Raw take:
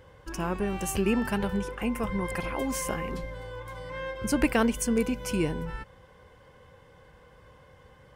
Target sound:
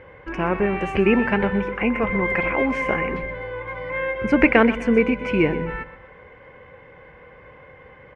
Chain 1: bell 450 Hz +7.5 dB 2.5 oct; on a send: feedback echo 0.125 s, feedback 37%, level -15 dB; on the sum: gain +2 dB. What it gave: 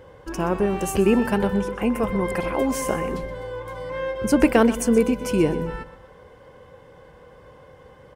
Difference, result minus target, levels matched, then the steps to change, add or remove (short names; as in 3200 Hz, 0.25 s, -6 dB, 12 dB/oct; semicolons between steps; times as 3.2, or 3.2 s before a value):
2000 Hz band -7.5 dB
add first: synth low-pass 2200 Hz, resonance Q 4.3